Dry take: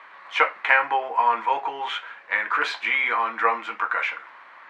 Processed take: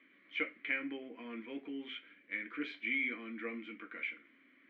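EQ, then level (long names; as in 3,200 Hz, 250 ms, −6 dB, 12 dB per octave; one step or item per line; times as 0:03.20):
formant filter i
tilt shelving filter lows +9 dB, about 650 Hz
low-shelf EQ 110 Hz +6 dB
+3.0 dB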